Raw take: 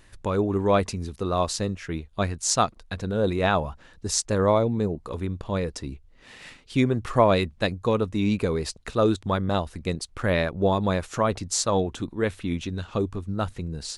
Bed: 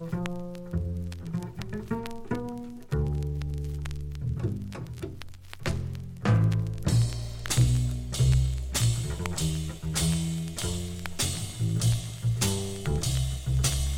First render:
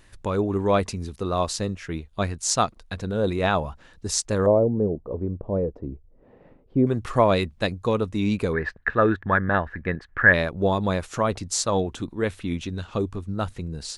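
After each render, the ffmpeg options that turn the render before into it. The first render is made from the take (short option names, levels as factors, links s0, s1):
-filter_complex "[0:a]asettb=1/sr,asplit=3[s0][s1][s2];[s0]atrim=end=4.464[s3];[s1]atrim=start=4.46:end=6.87,asetpts=PTS-STARTPTS,afade=t=in:d=0.004:c=qsin,afade=t=out:st=2.406:d=0.004:c=qsin,lowpass=f=550:t=q:w=1.6[s4];[s2]atrim=start=6.866[s5];[s3][s4]acrossfade=d=0.004:c1=hsin:c2=qsin[s6];[s6][s5]acrossfade=d=0.004:c1=qsin:c2=hsin,asplit=3[s7][s8][s9];[s7]afade=t=out:st=8.52:d=0.02[s10];[s8]lowpass=f=1700:t=q:w=14,afade=t=in:st=8.52:d=0.02,afade=t=out:st=10.32:d=0.02[s11];[s9]afade=t=in:st=10.32:d=0.02[s12];[s10][s11][s12]amix=inputs=3:normalize=0"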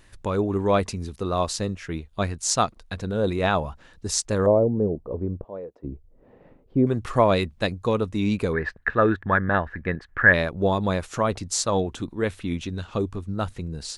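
-filter_complex "[0:a]asplit=3[s0][s1][s2];[s0]afade=t=out:st=5.43:d=0.02[s3];[s1]highpass=f=1400:p=1,afade=t=in:st=5.43:d=0.02,afade=t=out:st=5.83:d=0.02[s4];[s2]afade=t=in:st=5.83:d=0.02[s5];[s3][s4][s5]amix=inputs=3:normalize=0"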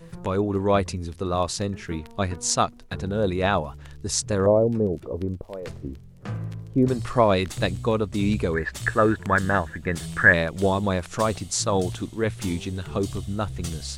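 -filter_complex "[1:a]volume=0.355[s0];[0:a][s0]amix=inputs=2:normalize=0"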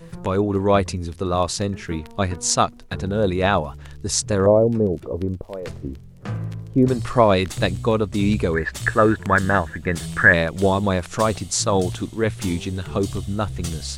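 -af "volume=1.5,alimiter=limit=0.891:level=0:latency=1"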